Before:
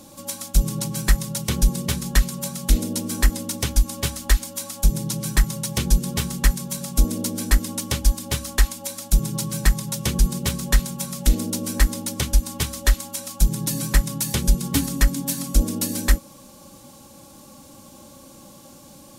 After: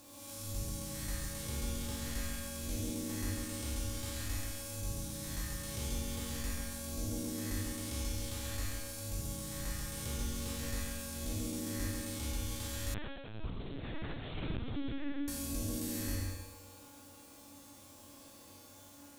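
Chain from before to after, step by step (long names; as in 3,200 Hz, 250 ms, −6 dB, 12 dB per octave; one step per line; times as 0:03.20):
spectrum smeared in time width 254 ms
parametric band 170 Hz −14 dB 0.36 octaves
bit reduction 8 bits
tuned comb filter 95 Hz, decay 1.4 s, harmonics odd, mix 90%
feedback echo with a low-pass in the loop 141 ms, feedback 27%, low-pass 2,900 Hz, level −4.5 dB
0:12.94–0:15.28: linear-prediction vocoder at 8 kHz pitch kept
level +7 dB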